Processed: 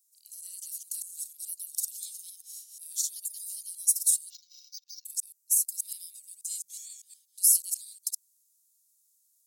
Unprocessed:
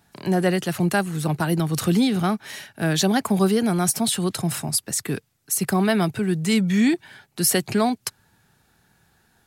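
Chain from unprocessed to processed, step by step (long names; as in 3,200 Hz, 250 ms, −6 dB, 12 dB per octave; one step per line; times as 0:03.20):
delay that plays each chunk backwards 121 ms, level −2.5 dB
inverse Chebyshev high-pass filter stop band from 1,200 Hz, stop band 80 dB
0:04.30–0:05.05: bad sample-rate conversion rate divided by 4×, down filtered, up hold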